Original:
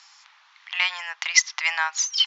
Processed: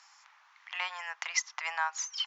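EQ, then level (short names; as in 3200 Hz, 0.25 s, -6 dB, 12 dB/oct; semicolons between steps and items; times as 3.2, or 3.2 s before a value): dynamic EQ 5800 Hz, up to -5 dB, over -36 dBFS, Q 1.3; bell 3800 Hz -10 dB 1.3 oct; dynamic EQ 2100 Hz, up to -7 dB, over -35 dBFS, Q 1.7; -2.5 dB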